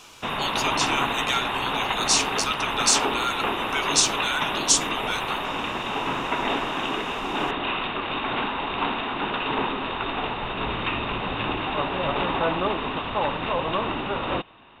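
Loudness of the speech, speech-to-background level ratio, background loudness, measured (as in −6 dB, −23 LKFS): −24.5 LKFS, 2.0 dB, −26.5 LKFS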